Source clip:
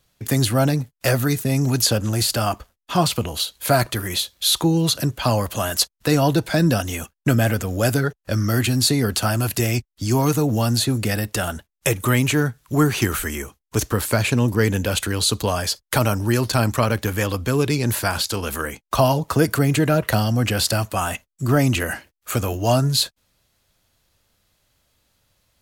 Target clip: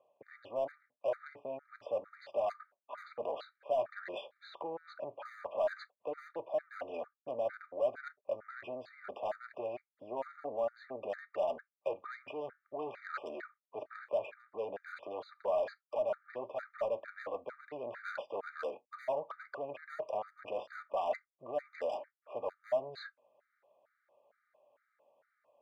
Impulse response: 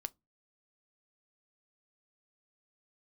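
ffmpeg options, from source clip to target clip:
-filter_complex "[0:a]lowpass=f=1.9k:w=0.5412,lowpass=f=1.9k:w=1.3066,areverse,acompressor=threshold=-31dB:ratio=4,areverse,asoftclip=type=tanh:threshold=-30dB,highpass=f=580:t=q:w=4.6,asplit=2[a][b];[b]asoftclip=type=hard:threshold=-28dB,volume=-4dB[c];[a][c]amix=inputs=2:normalize=0[d];[1:a]atrim=start_sample=2205,afade=t=out:st=0.13:d=0.01,atrim=end_sample=6174[e];[d][e]afir=irnorm=-1:irlink=0,afftfilt=real='re*gt(sin(2*PI*2.2*pts/sr)*(1-2*mod(floor(b*sr/1024/1200),2)),0)':imag='im*gt(sin(2*PI*2.2*pts/sr)*(1-2*mod(floor(b*sr/1024/1200),2)),0)':win_size=1024:overlap=0.75,volume=-4dB"

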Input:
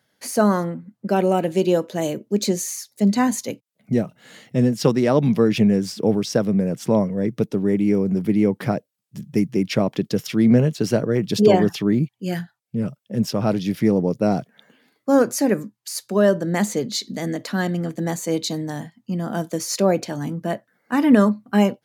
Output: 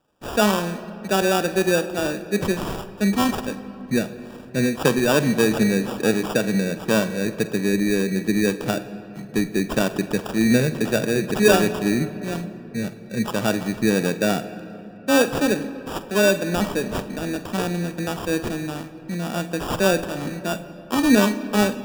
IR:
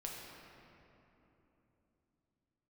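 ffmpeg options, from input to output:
-filter_complex "[0:a]highpass=f=200:p=1,acrusher=samples=21:mix=1:aa=0.000001,asplit=2[a][b];[1:a]atrim=start_sample=2205,adelay=46[c];[b][c]afir=irnorm=-1:irlink=0,volume=-10dB[d];[a][d]amix=inputs=2:normalize=0"

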